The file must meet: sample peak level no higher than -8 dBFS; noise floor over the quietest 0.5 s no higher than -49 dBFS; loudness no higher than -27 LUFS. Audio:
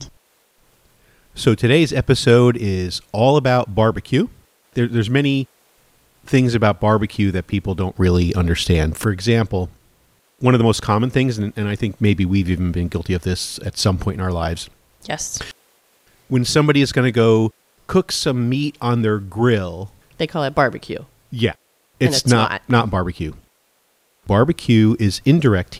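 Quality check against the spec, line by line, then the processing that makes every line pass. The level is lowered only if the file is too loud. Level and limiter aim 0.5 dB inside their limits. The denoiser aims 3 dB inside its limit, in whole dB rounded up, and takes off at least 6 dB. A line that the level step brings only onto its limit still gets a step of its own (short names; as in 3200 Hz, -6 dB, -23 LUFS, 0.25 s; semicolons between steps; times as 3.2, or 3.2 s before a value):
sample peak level -2.0 dBFS: fail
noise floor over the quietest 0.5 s -62 dBFS: OK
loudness -18.0 LUFS: fail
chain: gain -9.5 dB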